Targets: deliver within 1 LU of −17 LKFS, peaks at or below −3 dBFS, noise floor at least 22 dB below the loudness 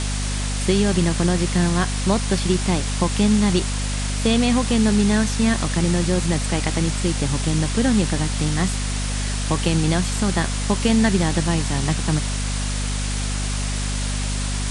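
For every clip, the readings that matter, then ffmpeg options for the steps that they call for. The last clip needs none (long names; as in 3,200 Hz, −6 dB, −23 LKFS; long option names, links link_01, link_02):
mains hum 50 Hz; hum harmonics up to 250 Hz; level of the hum −22 dBFS; background noise floor −24 dBFS; target noise floor −43 dBFS; integrated loudness −21.0 LKFS; sample peak −5.5 dBFS; target loudness −17.0 LKFS
→ -af "bandreject=frequency=50:width_type=h:width=6,bandreject=frequency=100:width_type=h:width=6,bandreject=frequency=150:width_type=h:width=6,bandreject=frequency=200:width_type=h:width=6,bandreject=frequency=250:width_type=h:width=6"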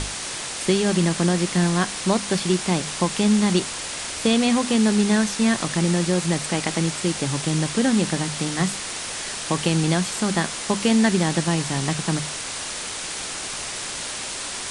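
mains hum none found; background noise floor −31 dBFS; target noise floor −45 dBFS
→ -af "afftdn=noise_reduction=14:noise_floor=-31"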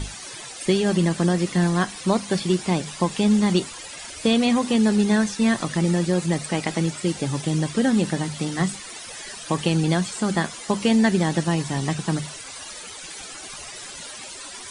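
background noise floor −38 dBFS; target noise floor −45 dBFS
→ -af "afftdn=noise_reduction=7:noise_floor=-38"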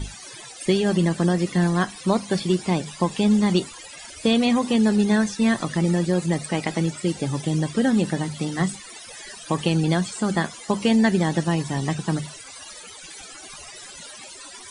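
background noise floor −41 dBFS; target noise floor −45 dBFS
→ -af "afftdn=noise_reduction=6:noise_floor=-41"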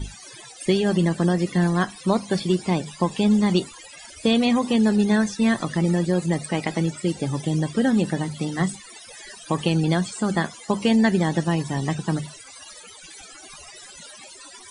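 background noise floor −44 dBFS; target noise floor −45 dBFS; integrated loudness −22.5 LKFS; sample peak −7.0 dBFS; target loudness −17.0 LKFS
→ -af "volume=5.5dB,alimiter=limit=-3dB:level=0:latency=1"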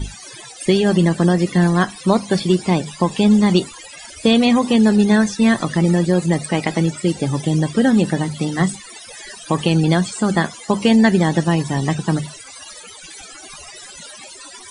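integrated loudness −17.0 LKFS; sample peak −3.0 dBFS; background noise floor −39 dBFS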